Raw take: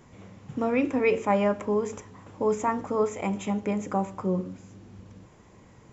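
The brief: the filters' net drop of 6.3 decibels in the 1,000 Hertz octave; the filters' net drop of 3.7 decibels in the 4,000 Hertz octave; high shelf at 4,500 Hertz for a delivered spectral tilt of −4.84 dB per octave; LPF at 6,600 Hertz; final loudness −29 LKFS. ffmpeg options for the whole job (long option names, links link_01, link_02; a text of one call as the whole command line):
ffmpeg -i in.wav -af "lowpass=6600,equalizer=frequency=1000:width_type=o:gain=-8,equalizer=frequency=4000:width_type=o:gain=-6.5,highshelf=frequency=4500:gain=4" out.wav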